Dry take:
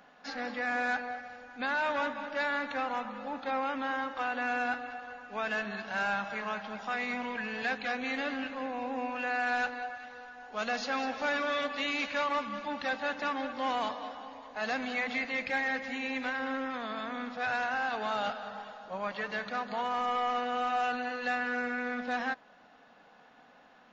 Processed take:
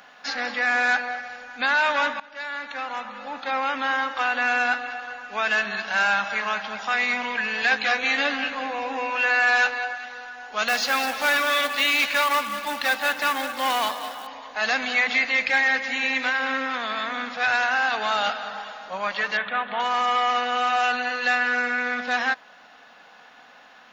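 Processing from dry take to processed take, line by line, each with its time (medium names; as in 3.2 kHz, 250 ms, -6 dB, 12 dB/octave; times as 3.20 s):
2.20–3.84 s: fade in, from -17.5 dB
7.70–9.93 s: doubling 14 ms -4.5 dB
10.68–14.27 s: short-mantissa float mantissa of 2-bit
15.51–16.35 s: echo throw 450 ms, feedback 65%, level -14.5 dB
19.37–19.80 s: elliptic low-pass 3.5 kHz
whole clip: tilt shelf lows -7 dB, about 760 Hz; trim +7 dB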